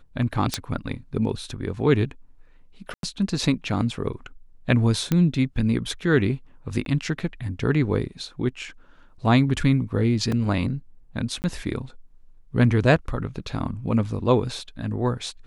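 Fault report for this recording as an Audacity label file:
0.540000	0.540000	pop -8 dBFS
2.940000	3.030000	gap 92 ms
5.120000	5.120000	pop -9 dBFS
6.850000	6.860000	gap 12 ms
10.320000	10.320000	gap 2.9 ms
11.420000	11.440000	gap 19 ms

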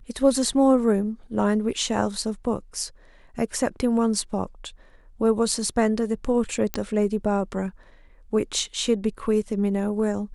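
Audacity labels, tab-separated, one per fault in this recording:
6.740000	6.740000	pop -9 dBFS

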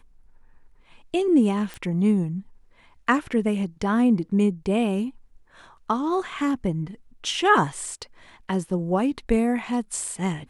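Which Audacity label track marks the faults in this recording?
1.740000	1.740000	pop -21 dBFS

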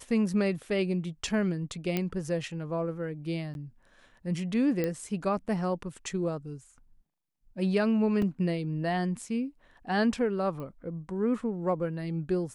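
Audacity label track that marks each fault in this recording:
1.970000	1.970000	pop -15 dBFS
3.540000	3.550000	gap 11 ms
4.840000	4.840000	pop -17 dBFS
8.220000	8.220000	gap 3.1 ms
10.600000	10.600000	pop -29 dBFS

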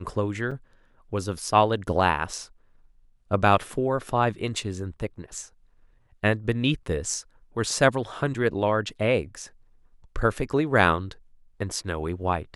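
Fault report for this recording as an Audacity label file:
0.510000	0.520000	gap 5.1 ms

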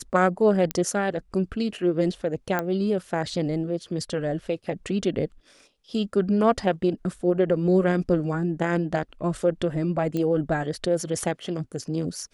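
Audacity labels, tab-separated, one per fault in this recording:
0.710000	0.710000	pop -10 dBFS
2.590000	2.590000	pop -12 dBFS
10.170000	10.170000	pop -17 dBFS

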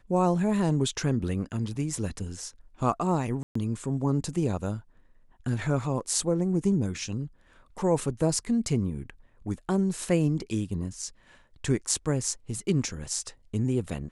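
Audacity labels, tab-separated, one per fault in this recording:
3.430000	3.550000	gap 0.124 s

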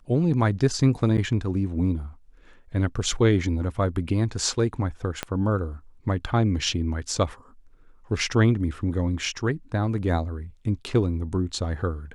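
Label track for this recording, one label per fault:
1.170000	1.180000	gap 9.3 ms
5.230000	5.230000	pop -11 dBFS

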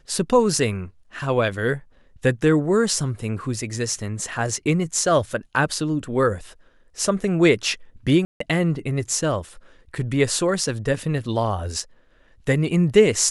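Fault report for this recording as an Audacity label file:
8.250000	8.400000	gap 0.154 s

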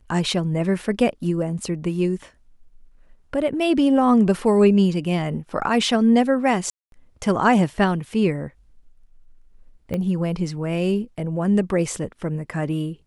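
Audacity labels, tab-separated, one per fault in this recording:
6.700000	6.920000	gap 0.222 s
9.940000	9.940000	pop -15 dBFS

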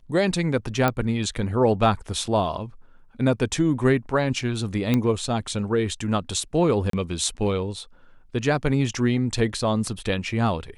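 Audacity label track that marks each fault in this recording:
0.880000	0.880000	pop -8 dBFS
4.940000	4.940000	pop -9 dBFS
6.900000	6.930000	gap 33 ms

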